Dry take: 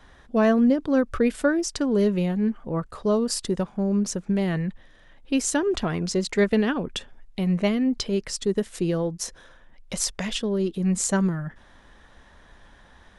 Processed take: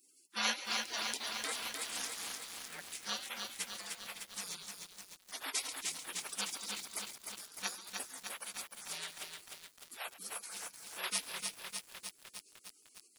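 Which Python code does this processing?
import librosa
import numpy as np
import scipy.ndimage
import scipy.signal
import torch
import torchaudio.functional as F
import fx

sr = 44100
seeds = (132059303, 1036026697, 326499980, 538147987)

p1 = fx.vibrato(x, sr, rate_hz=1.9, depth_cents=9.8)
p2 = scipy.signal.sosfilt(scipy.signal.butter(4, 710.0, 'highpass', fs=sr, output='sos'), p1)
p3 = p2 + fx.echo_feedback(p2, sr, ms=139, feedback_pct=39, wet_db=-14, dry=0)
p4 = fx.spec_gate(p3, sr, threshold_db=-30, keep='weak')
p5 = fx.echo_crushed(p4, sr, ms=303, feedback_pct=80, bits=11, wet_db=-3.5)
y = p5 * librosa.db_to_amplitude(14.0)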